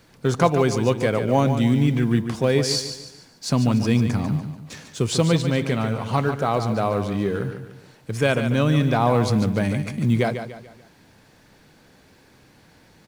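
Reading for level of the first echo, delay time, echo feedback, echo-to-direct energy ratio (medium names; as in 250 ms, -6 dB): -9.0 dB, 145 ms, 40%, -8.0 dB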